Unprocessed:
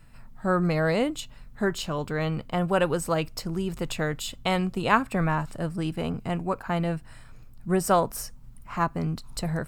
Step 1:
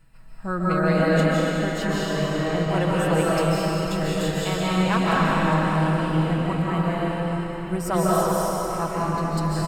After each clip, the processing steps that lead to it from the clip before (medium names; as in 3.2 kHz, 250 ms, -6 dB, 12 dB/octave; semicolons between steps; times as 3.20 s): comb 6.2 ms, depth 46%; hard clipper -11 dBFS, distortion -29 dB; algorithmic reverb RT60 4.5 s, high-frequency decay 0.9×, pre-delay 110 ms, DRR -8 dB; trim -5 dB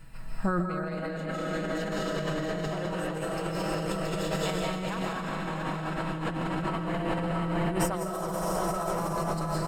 feedback delay 674 ms, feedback 44%, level -4.5 dB; compressor with a negative ratio -30 dBFS, ratio -1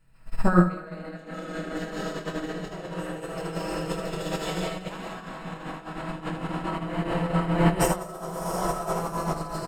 on a send: early reflections 23 ms -3.5 dB, 78 ms -4 dB; on the sum: upward expansion 2.5:1, over -36 dBFS; trim +8.5 dB